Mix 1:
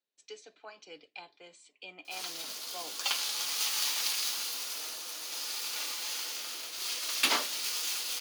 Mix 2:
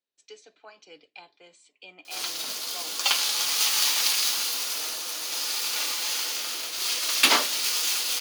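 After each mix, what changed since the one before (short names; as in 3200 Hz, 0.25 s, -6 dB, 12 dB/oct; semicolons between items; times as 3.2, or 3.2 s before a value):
background +8.0 dB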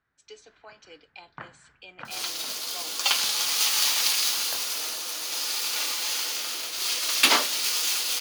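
first sound: unmuted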